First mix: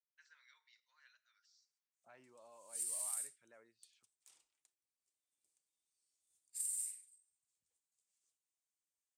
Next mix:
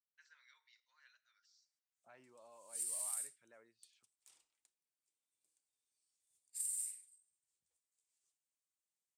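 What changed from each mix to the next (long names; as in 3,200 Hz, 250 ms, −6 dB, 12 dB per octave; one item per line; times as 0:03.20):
background: add parametric band 6,400 Hz −2 dB 0.2 octaves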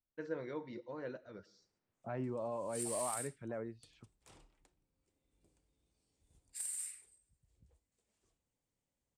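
first voice: remove high-pass filter 1,300 Hz 24 dB per octave
master: remove first difference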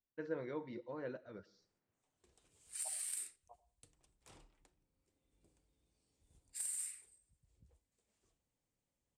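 first voice: add high-frequency loss of the air 97 metres
second voice: muted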